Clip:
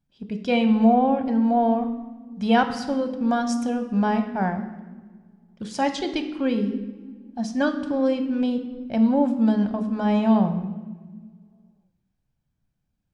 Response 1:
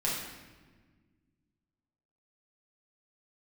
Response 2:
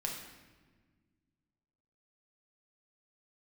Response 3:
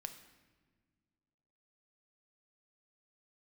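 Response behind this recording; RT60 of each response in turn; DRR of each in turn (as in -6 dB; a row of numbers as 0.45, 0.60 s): 3; 1.4 s, 1.4 s, not exponential; -7.0, -1.0, 6.5 dB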